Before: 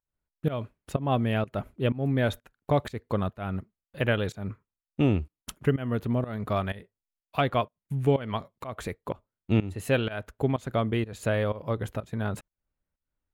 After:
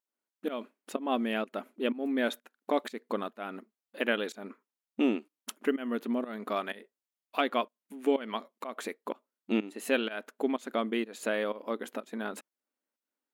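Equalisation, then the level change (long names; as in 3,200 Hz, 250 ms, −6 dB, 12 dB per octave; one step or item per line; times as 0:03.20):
dynamic equaliser 650 Hz, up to −4 dB, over −37 dBFS, Q 0.8
linear-phase brick-wall high-pass 210 Hz
0.0 dB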